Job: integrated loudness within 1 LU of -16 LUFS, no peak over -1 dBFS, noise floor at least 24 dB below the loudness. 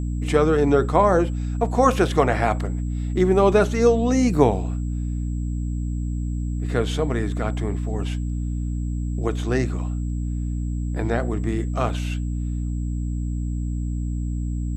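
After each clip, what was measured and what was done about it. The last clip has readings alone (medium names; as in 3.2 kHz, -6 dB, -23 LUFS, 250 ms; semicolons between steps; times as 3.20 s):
hum 60 Hz; highest harmonic 300 Hz; hum level -23 dBFS; steady tone 7.7 kHz; tone level -52 dBFS; loudness -23.0 LUFS; peak level -2.0 dBFS; loudness target -16.0 LUFS
-> de-hum 60 Hz, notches 5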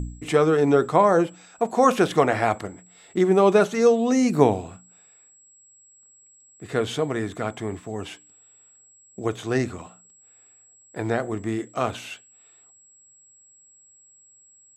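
hum not found; steady tone 7.7 kHz; tone level -52 dBFS
-> band-stop 7.7 kHz, Q 30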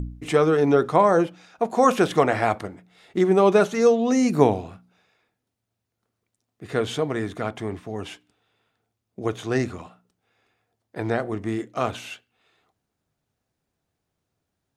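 steady tone not found; loudness -22.0 LUFS; peak level -2.0 dBFS; loudness target -16.0 LUFS
-> trim +6 dB; peak limiter -1 dBFS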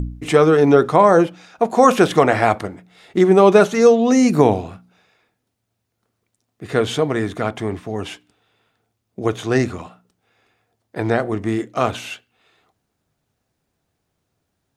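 loudness -16.5 LUFS; peak level -1.0 dBFS; noise floor -75 dBFS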